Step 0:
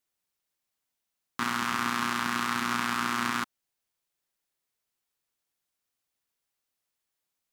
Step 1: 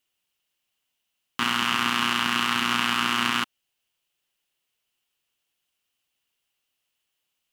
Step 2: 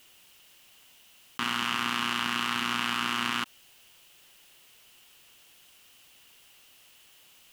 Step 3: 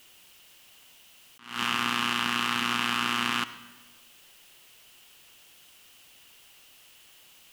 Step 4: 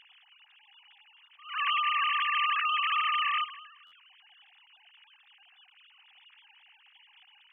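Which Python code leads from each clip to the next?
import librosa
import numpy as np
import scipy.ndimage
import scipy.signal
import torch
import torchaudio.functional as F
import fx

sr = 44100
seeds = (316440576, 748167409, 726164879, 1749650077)

y1 = fx.peak_eq(x, sr, hz=2900.0, db=13.0, octaves=0.41)
y1 = y1 * 10.0 ** (3.0 / 20.0)
y2 = fx.env_flatten(y1, sr, amount_pct=50)
y2 = y2 * 10.0 ** (-6.5 / 20.0)
y3 = fx.rev_freeverb(y2, sr, rt60_s=1.3, hf_ratio=0.6, predelay_ms=45, drr_db=13.5)
y3 = fx.attack_slew(y3, sr, db_per_s=130.0)
y3 = y3 * 10.0 ** (2.0 / 20.0)
y4 = fx.sine_speech(y3, sr)
y4 = fx.buffer_glitch(y4, sr, at_s=(3.86,), block=512, repeats=4)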